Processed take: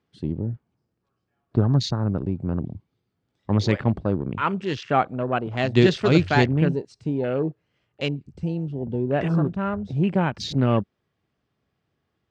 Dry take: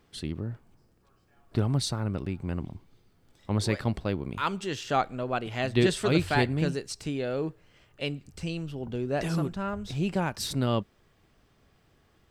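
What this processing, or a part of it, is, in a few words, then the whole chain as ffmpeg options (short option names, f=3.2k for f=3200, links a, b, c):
over-cleaned archive recording: -af "highpass=100,lowpass=5.6k,afwtdn=0.01,lowshelf=f=200:g=5,volume=5dB"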